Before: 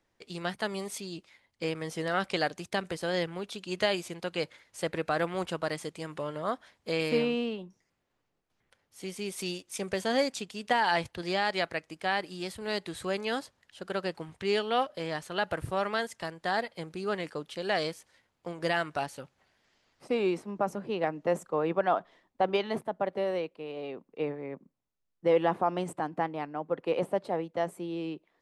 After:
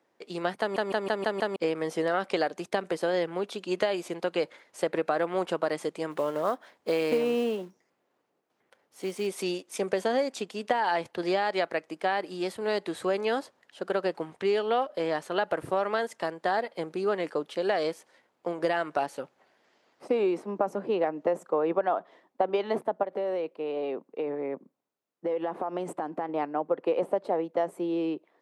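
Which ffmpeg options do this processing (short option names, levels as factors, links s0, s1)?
-filter_complex "[0:a]asplit=3[s0][s1][s2];[s0]afade=t=out:st=6.1:d=0.02[s3];[s1]acrusher=bits=4:mode=log:mix=0:aa=0.000001,afade=t=in:st=6.1:d=0.02,afade=t=out:st=9.26:d=0.02[s4];[s2]afade=t=in:st=9.26:d=0.02[s5];[s3][s4][s5]amix=inputs=3:normalize=0,asettb=1/sr,asplit=3[s6][s7][s8];[s6]atrim=end=23.034[s9];[s7]atrim=start=23.03:end=26.29,asetpts=PTS-STARTPTS,afade=t=in:d=0.004:c=qsin,afade=t=out:st=3.256:d=0.004:c=qsin,acompressor=threshold=0.02:ratio=6:attack=3.2:release=140:knee=1:detection=peak[s10];[s8]atrim=start=26.286[s11];[s9][s10]acrossfade=d=0.004:c1=hsin:c2=qsin[s12];[s12][s11]acrossfade=d=0.004:c1=qsin:c2=hsin,asplit=7[s13][s14][s15][s16][s17][s18][s19];[s13]atrim=end=0.762[s20];[s14]atrim=start=0.598:end=0.762[s21];[s15]atrim=start=0.598:end=0.762[s22];[s16]atrim=start=0.598:end=0.762[s23];[s17]atrim=start=0.598:end=0.762[s24];[s18]atrim=start=0.598:end=0.762[s25];[s19]atrim=start=1.558[s26];[s20][s21]acrossfade=d=0.004:c1=hsin:c2=hsin[s27];[s27][s22]acrossfade=d=0.004:c1=hsin:c2=hsin[s28];[s28][s23]acrossfade=d=0.004:c1=hsin:c2=hsin[s29];[s29][s24]acrossfade=d=0.004:c1=hsin:c2=hsin[s30];[s30][s25]acrossfade=d=0.004:c1=hsin:c2=hsin[s31];[s31][s26]acrossfade=d=0.004:c1=hsin:c2=hsin,highpass=330,tiltshelf=f=1400:g=6,acompressor=threshold=0.0447:ratio=6,volume=1.68"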